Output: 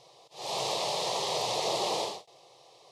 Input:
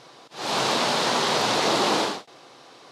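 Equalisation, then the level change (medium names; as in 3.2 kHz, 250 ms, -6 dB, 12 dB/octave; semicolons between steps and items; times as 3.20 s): static phaser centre 620 Hz, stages 4; -5.5 dB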